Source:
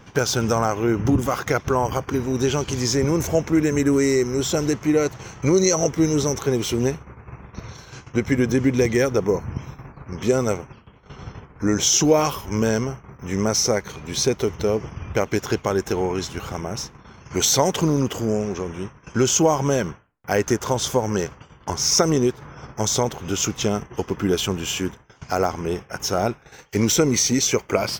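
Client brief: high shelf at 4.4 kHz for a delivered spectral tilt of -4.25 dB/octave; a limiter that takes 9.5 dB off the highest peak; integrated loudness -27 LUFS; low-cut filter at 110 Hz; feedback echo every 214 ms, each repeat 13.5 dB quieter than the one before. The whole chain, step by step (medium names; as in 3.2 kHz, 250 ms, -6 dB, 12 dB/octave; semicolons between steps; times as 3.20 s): high-pass 110 Hz; treble shelf 4.4 kHz -3.5 dB; peak limiter -13 dBFS; feedback delay 214 ms, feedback 21%, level -13.5 dB; trim -2.5 dB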